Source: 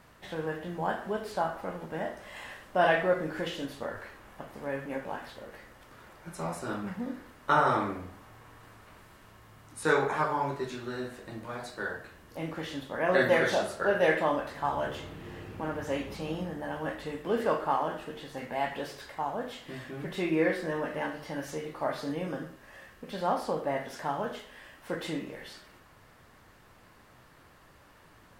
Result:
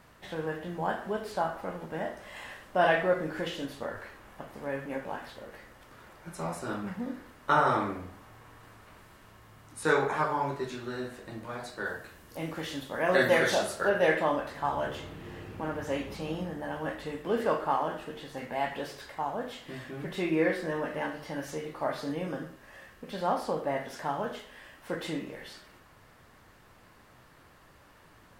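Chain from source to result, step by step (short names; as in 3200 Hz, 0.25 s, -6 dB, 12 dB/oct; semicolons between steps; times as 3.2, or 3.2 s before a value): 11.85–13.88 high shelf 6000 Hz -> 3600 Hz +7.5 dB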